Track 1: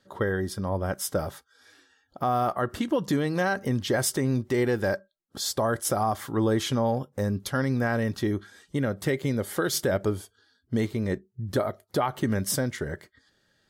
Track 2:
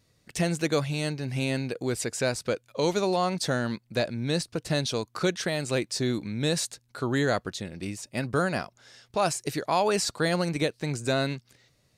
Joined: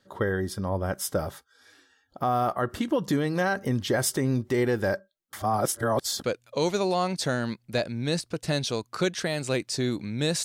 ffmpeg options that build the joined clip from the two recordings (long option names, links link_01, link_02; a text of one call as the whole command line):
ffmpeg -i cue0.wav -i cue1.wav -filter_complex "[0:a]apad=whole_dur=10.44,atrim=end=10.44,asplit=2[link_01][link_02];[link_01]atrim=end=5.332[link_03];[link_02]atrim=start=5.328:end=6.242,asetpts=PTS-STARTPTS,areverse[link_04];[1:a]atrim=start=2.458:end=6.66[link_05];[link_03][link_04]acrossfade=duration=0.004:curve1=hsin:curve2=hsin[link_06];[link_06][link_05]acrossfade=duration=0.004:curve1=hsin:curve2=hsin" out.wav